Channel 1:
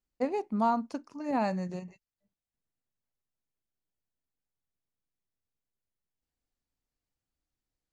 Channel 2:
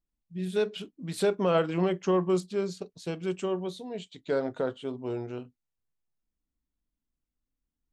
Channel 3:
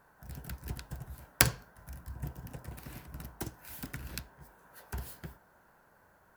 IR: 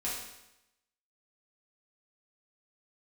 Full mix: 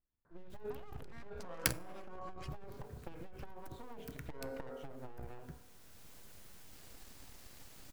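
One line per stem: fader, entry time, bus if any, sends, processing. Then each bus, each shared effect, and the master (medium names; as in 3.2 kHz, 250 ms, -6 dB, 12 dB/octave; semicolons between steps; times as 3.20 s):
-4.0 dB, 0.50 s, bus A, no send, level flattener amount 100%; auto duck -8 dB, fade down 1.10 s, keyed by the second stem
-1.5 dB, 0.00 s, bus A, send -13 dB, Chebyshev low-pass 1.6 kHz, order 2; peaking EQ 210 Hz -3.5 dB 1.4 oct
-6.0 dB, 0.25 s, no bus, send -18 dB, local Wiener filter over 15 samples; peaking EQ 820 Hz -8.5 dB 0.48 oct
bus A: 0.0 dB, full-wave rectifier; compression 8:1, threshold -37 dBFS, peak gain reduction 14.5 dB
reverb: on, RT60 0.90 s, pre-delay 4 ms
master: transformer saturation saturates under 750 Hz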